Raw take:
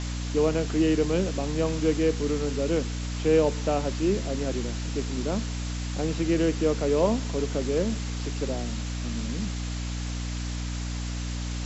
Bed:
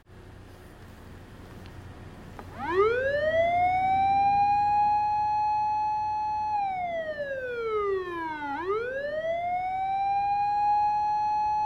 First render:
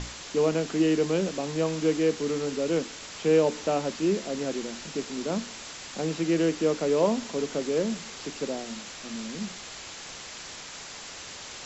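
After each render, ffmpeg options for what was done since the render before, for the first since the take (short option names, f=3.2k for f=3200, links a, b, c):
-af "bandreject=f=60:t=h:w=6,bandreject=f=120:t=h:w=6,bandreject=f=180:t=h:w=6,bandreject=f=240:t=h:w=6,bandreject=f=300:t=h:w=6"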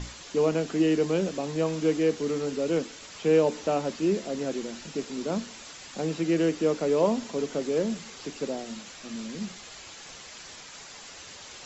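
-af "afftdn=nr=6:nf=-42"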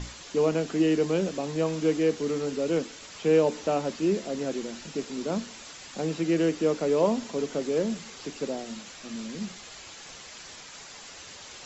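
-af anull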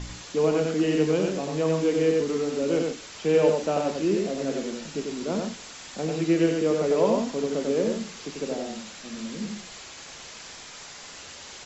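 -filter_complex "[0:a]asplit=2[a][b];[b]adelay=33,volume=-13dB[c];[a][c]amix=inputs=2:normalize=0,aecho=1:1:93.29|137:0.708|0.251"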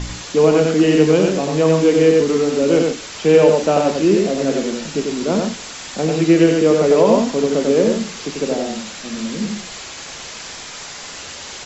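-af "volume=10dB,alimiter=limit=-2dB:level=0:latency=1"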